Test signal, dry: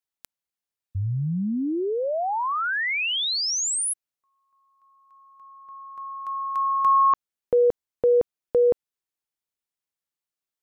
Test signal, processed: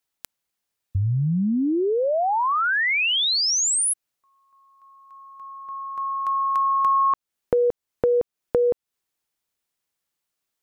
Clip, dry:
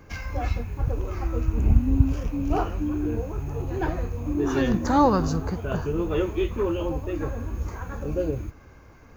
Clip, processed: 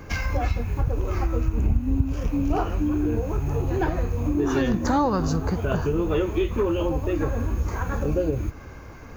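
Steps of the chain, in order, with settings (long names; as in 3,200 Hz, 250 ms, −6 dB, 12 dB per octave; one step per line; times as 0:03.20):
downward compressor 3 to 1, threshold −30 dBFS
level +8.5 dB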